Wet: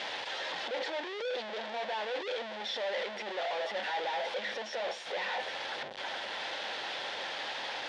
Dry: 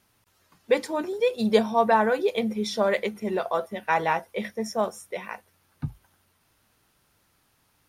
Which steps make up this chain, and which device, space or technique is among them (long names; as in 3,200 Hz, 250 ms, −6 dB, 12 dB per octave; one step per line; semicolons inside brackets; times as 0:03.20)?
home computer beeper (sign of each sample alone; loudspeaker in its box 520–4,500 Hz, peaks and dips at 540 Hz +8 dB, 810 Hz +6 dB, 1,200 Hz −7 dB, 1,800 Hz +5 dB, 3,400 Hz +6 dB)
level −8.5 dB